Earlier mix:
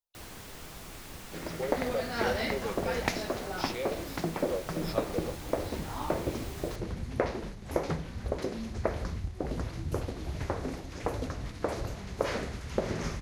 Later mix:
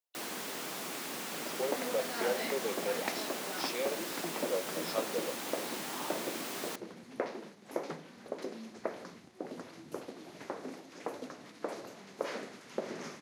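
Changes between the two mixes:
first sound +7.0 dB; second sound -6.0 dB; master: add high-pass 210 Hz 24 dB/octave

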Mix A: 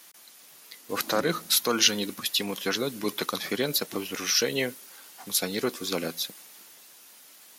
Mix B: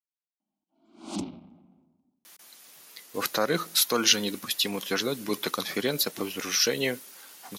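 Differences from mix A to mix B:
speech: entry +2.25 s; background +4.5 dB

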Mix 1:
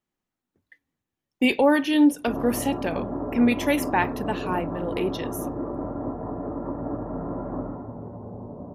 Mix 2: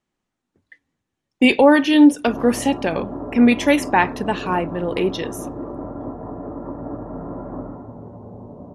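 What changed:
speech +6.5 dB; master: add low-pass 9.7 kHz 24 dB/octave

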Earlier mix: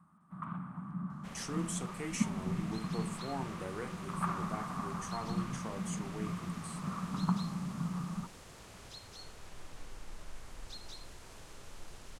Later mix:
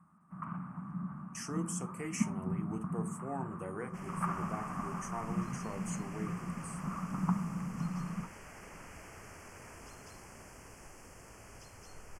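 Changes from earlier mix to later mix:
second sound: entry +2.70 s; master: add Butterworth band-stop 3.8 kHz, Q 1.7

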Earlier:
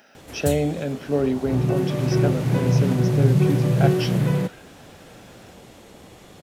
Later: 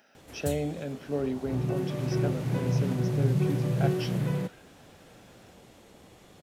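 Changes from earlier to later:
speech -8.5 dB; background -8.0 dB

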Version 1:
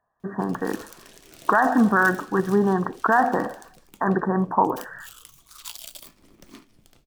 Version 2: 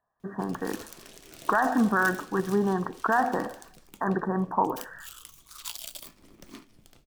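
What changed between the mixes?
speech -6.0 dB; reverb: on, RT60 0.30 s

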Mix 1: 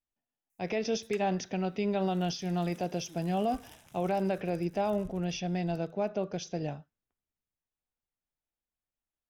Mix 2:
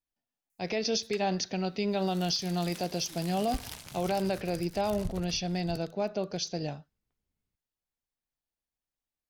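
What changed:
speech: add treble shelf 5.2 kHz +8.5 dB; second sound +12.0 dB; master: add peaking EQ 4.4 kHz +14 dB 0.26 oct

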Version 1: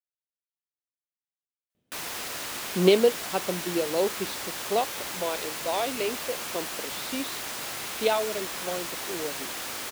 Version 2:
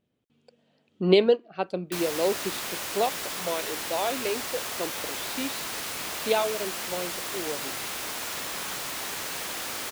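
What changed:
speech: entry -1.75 s; background: send +6.5 dB

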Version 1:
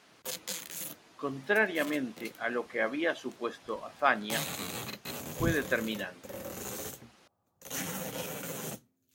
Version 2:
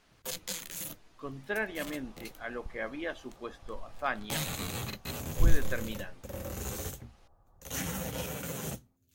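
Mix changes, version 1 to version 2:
speech -6.5 dB; second sound +9.0 dB; master: remove high-pass 180 Hz 12 dB/octave

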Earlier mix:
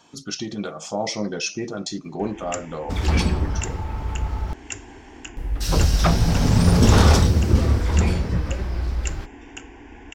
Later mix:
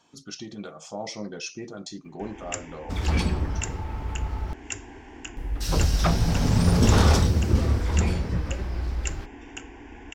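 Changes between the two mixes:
speech -8.0 dB; second sound -4.0 dB; reverb: off

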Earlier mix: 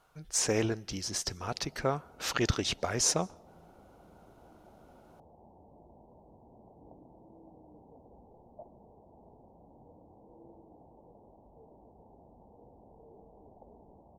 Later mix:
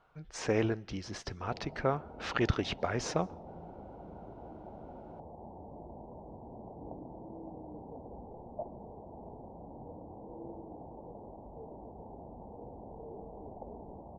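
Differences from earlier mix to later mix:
speech: add low-pass 2.8 kHz 12 dB/octave; background +9.5 dB

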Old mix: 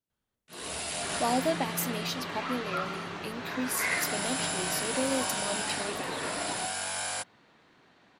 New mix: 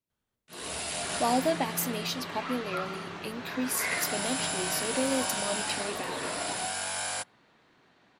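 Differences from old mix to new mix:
second sound -3.5 dB; reverb: on, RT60 1.1 s

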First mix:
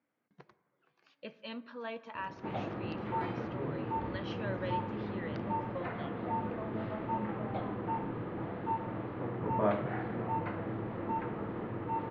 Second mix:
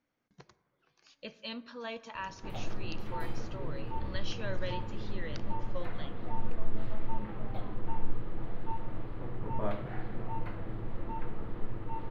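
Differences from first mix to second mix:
background -6.5 dB; master: remove band-pass 150–2500 Hz

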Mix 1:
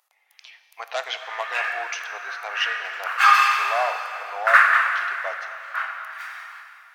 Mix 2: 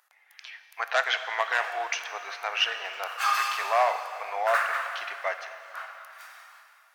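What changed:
speech: add peaking EQ 1.6 kHz +10 dB 0.65 oct; background: add peaking EQ 1.8 kHz -13.5 dB 2.2 oct

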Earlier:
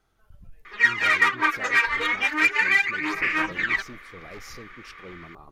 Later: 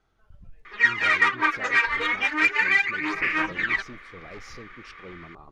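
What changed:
speech: add treble shelf 11 kHz -4.5 dB; master: add distance through air 57 m

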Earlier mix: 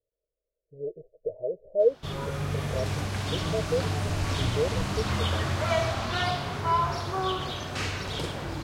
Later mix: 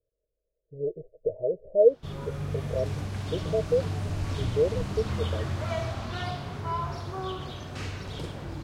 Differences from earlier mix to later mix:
background -8.5 dB; master: add bass shelf 450 Hz +7.5 dB

